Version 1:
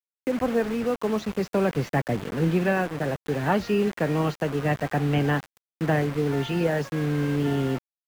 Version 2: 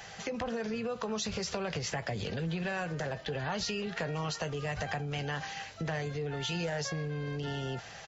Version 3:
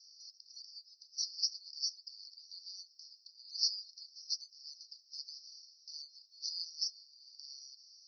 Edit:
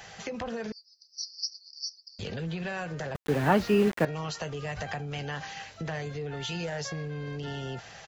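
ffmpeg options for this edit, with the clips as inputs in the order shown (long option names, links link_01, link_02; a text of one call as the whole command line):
ffmpeg -i take0.wav -i take1.wav -i take2.wav -filter_complex "[1:a]asplit=3[link_01][link_02][link_03];[link_01]atrim=end=0.722[link_04];[2:a]atrim=start=0.718:end=2.192[link_05];[link_02]atrim=start=2.188:end=3.152[link_06];[0:a]atrim=start=3.148:end=4.052[link_07];[link_03]atrim=start=4.048[link_08];[link_04][link_05]acrossfade=duration=0.004:curve1=hsin:curve2=hsin[link_09];[link_09][link_06]acrossfade=duration=0.004:curve1=hsin:curve2=hsin[link_10];[link_10][link_07]acrossfade=duration=0.004:curve1=hsin:curve2=hsin[link_11];[link_11][link_08]acrossfade=duration=0.004:curve1=hsin:curve2=hsin" out.wav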